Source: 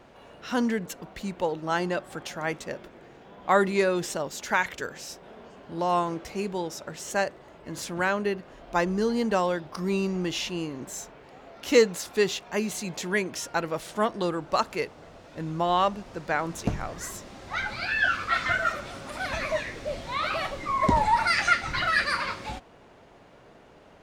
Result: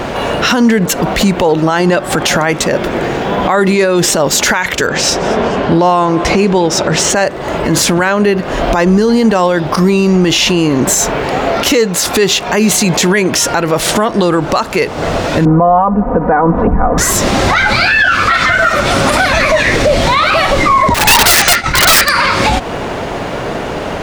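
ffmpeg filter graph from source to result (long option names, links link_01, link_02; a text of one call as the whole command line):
ffmpeg -i in.wav -filter_complex "[0:a]asettb=1/sr,asplit=3[link_01][link_02][link_03];[link_01]atrim=end=4.874[link_04];[link_02]atrim=start=4.87:end=7.16,asetpts=PTS-STARTPTS,afade=type=in:duration=0.004:curve=qsin,afade=type=out:start_time=2.286:duration=0.004:curve=qsin,adynamicsmooth=sensitivity=4:basefreq=6400,aecho=1:1:214|428:0.0794|0.0254,atrim=end_sample=100989[link_05];[link_03]atrim=start=7.156[link_06];[link_04][link_05]acrossfade=duration=0.004:curve1=hsin:curve2=qsin[link_07];[link_07][link_06]acrossfade=duration=0.004:curve1=qsin:curve2=hsin,asettb=1/sr,asplit=3[link_08][link_09][link_10];[link_08]atrim=end=15.454[link_11];[link_09]atrim=start=15.45:end=16.98,asetpts=PTS-STARTPTS,afade=type=in:duration=0.004:curve=qsin,afade=type=out:start_time=1.526:duration=0.004:curve=qsin,lowpass=frequency=1200:width=0.5412,lowpass=frequency=1200:width=1.3066,aecho=1:1:4.1:0.99,atrim=end_sample=67473[link_12];[link_10]atrim=start=16.976[link_13];[link_11][link_12]acrossfade=duration=0.004:curve1=hsin:curve2=qsin[link_14];[link_14][link_13]acrossfade=duration=0.004:curve1=qsin:curve2=hsin,asettb=1/sr,asplit=3[link_15][link_16][link_17];[link_15]atrim=end=20.944[link_18];[link_16]atrim=start=20.94:end=22.09,asetpts=PTS-STARTPTS,afade=type=in:duration=0.004:curve=qsin,afade=type=out:start_time=1.146:duration=0.004:curve=qsin,agate=range=-33dB:threshold=-23dB:ratio=3:release=100:detection=peak,acompressor=threshold=-25dB:ratio=12:attack=3.2:release=140:knee=1:detection=peak,aeval=exprs='(mod(21.1*val(0)+1,2)-1)/21.1':channel_layout=same[link_19];[link_17]atrim=start=22.086[link_20];[link_18][link_19]acrossfade=duration=0.004:curve1=hsin:curve2=qsin[link_21];[link_21][link_20]acrossfade=duration=0.004:curve1=qsin:curve2=hsin,acompressor=threshold=-38dB:ratio=4,alimiter=level_in=35dB:limit=-1dB:release=50:level=0:latency=1,volume=-1dB" out.wav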